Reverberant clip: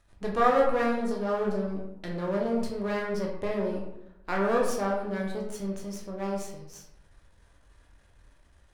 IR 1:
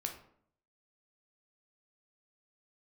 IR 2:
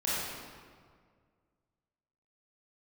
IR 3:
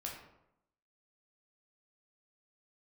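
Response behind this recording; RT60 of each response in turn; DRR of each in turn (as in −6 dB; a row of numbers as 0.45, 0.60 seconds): 3; 0.65, 1.9, 0.85 seconds; 3.0, −9.5, −2.0 decibels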